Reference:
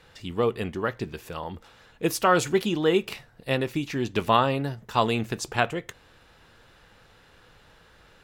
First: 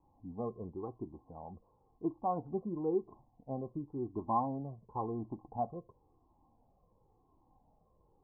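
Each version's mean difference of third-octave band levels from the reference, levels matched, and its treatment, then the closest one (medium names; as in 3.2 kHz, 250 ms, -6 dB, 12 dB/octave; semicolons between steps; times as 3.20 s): 11.0 dB: rippled Chebyshev low-pass 1.1 kHz, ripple 9 dB; Shepard-style flanger falling 0.95 Hz; trim -2 dB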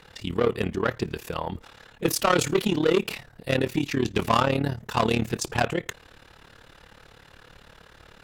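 3.5 dB: saturation -20.5 dBFS, distortion -9 dB; AM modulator 36 Hz, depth 75%; trim +8 dB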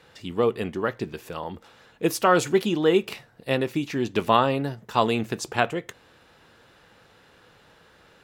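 1.0 dB: high-pass 280 Hz 6 dB/octave; bass shelf 480 Hz +7 dB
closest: third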